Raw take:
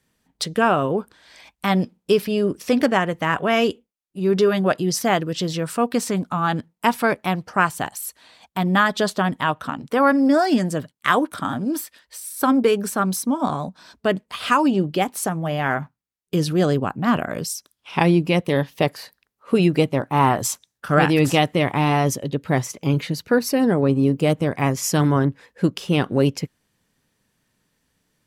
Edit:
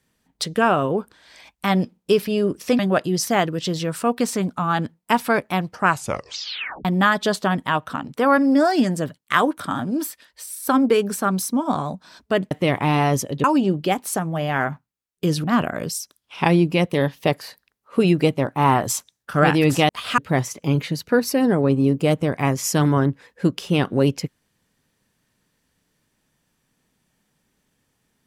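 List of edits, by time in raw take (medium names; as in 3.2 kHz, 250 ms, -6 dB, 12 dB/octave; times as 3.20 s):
2.79–4.53 s: delete
7.61 s: tape stop 0.98 s
14.25–14.54 s: swap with 21.44–22.37 s
16.54–16.99 s: delete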